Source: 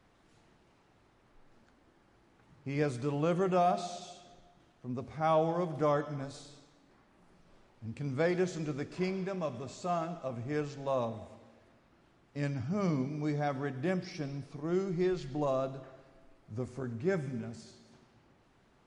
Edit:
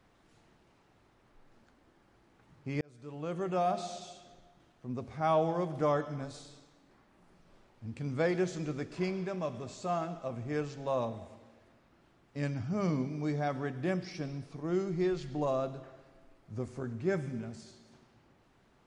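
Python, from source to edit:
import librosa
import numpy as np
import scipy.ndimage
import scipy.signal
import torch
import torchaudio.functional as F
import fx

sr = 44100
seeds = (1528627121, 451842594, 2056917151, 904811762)

y = fx.edit(x, sr, fx.fade_in_span(start_s=2.81, length_s=1.1), tone=tone)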